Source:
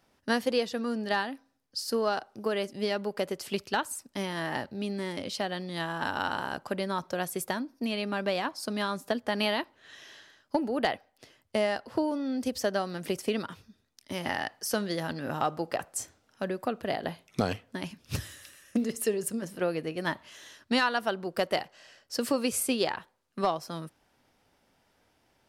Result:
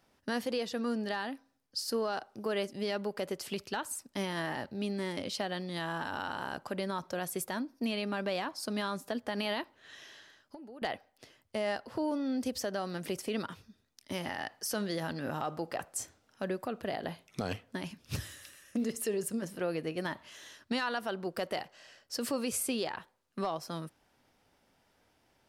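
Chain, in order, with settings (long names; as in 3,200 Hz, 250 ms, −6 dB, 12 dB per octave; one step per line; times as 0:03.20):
brickwall limiter −22.5 dBFS, peak gain reduction 7.5 dB
0:10.05–0:10.82: downward compressor 5 to 1, threshold −47 dBFS, peak gain reduction 17.5 dB
level −1.5 dB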